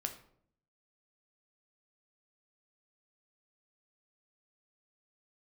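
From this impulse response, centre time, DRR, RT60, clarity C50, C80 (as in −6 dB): 12 ms, 5.0 dB, 0.65 s, 11.0 dB, 14.5 dB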